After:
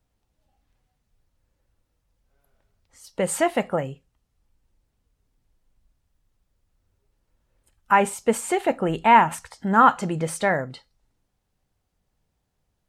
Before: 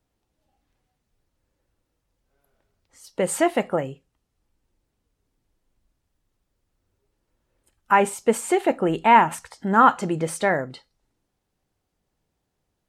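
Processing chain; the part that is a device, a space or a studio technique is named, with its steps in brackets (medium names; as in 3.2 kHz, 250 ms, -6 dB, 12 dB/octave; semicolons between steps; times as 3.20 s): low shelf boost with a cut just above (bass shelf 100 Hz +6.5 dB; peaking EQ 340 Hz -4.5 dB 0.74 oct)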